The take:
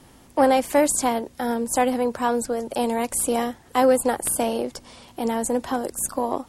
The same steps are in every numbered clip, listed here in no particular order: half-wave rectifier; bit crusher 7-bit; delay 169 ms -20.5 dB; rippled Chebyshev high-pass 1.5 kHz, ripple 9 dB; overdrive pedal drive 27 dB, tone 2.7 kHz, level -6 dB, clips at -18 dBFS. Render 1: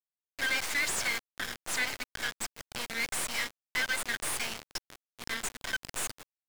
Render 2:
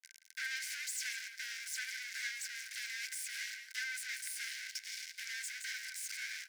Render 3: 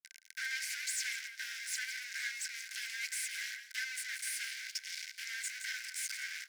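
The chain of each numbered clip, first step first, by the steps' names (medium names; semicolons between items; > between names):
rippled Chebyshev high-pass > half-wave rectifier > delay > bit crusher > overdrive pedal; bit crusher > delay > overdrive pedal > half-wave rectifier > rippled Chebyshev high-pass; bit crusher > delay > half-wave rectifier > overdrive pedal > rippled Chebyshev high-pass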